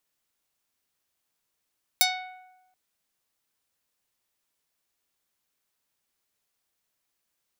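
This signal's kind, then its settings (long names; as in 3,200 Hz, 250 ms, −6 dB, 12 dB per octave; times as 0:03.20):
Karplus-Strong string F#5, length 0.73 s, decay 1.04 s, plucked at 0.45, medium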